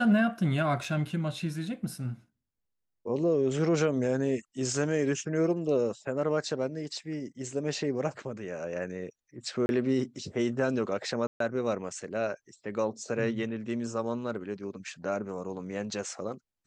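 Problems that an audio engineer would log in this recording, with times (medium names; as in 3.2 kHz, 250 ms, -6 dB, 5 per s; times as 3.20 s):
0.84 s: dropout 3.3 ms
9.66–9.69 s: dropout 31 ms
11.27–11.40 s: dropout 133 ms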